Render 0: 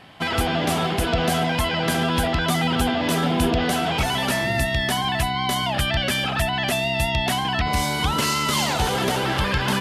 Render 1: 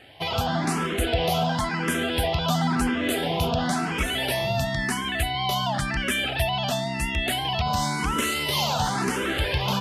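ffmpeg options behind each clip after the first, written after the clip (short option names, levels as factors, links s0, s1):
-filter_complex "[0:a]asplit=2[s0][s1];[s1]afreqshift=0.96[s2];[s0][s2]amix=inputs=2:normalize=1"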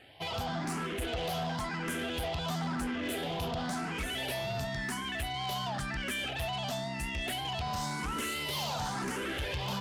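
-af "asoftclip=type=tanh:threshold=0.0668,volume=0.473"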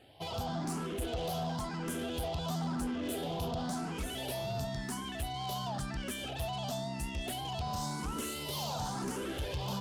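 -af "equalizer=f=2000:w=1.1:g=-11"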